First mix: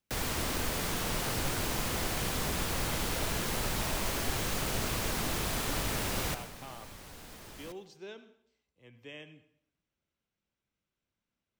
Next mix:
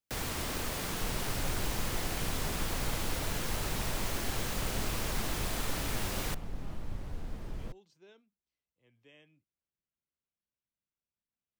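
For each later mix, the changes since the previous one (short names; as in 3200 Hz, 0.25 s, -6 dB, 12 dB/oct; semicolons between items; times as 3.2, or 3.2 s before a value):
speech -11.0 dB; second sound: add tilt -3.5 dB/oct; reverb: off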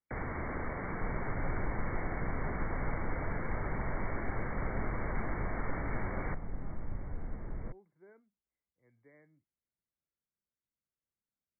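master: add brick-wall FIR low-pass 2300 Hz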